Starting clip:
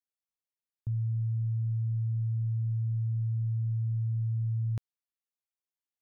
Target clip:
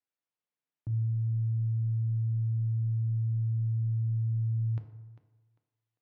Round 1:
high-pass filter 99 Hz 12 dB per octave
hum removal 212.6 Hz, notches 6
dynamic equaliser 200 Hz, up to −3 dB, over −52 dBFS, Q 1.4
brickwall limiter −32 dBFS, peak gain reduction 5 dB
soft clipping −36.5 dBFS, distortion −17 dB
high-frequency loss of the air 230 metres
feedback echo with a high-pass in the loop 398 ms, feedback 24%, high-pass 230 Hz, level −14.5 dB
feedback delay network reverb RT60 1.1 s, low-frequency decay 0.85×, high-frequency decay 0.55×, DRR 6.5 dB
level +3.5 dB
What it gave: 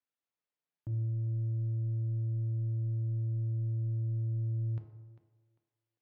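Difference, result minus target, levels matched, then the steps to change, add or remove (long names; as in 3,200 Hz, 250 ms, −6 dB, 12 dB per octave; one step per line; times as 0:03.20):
soft clipping: distortion +18 dB
change: soft clipping −25.5 dBFS, distortion −35 dB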